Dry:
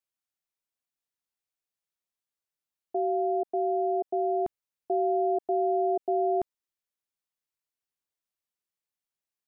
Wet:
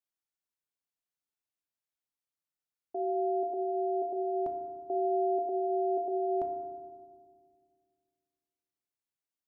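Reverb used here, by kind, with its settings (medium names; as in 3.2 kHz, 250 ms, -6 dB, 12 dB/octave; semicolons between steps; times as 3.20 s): FDN reverb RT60 1.8 s, low-frequency decay 1.45×, high-frequency decay 0.3×, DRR 4.5 dB; trim -6 dB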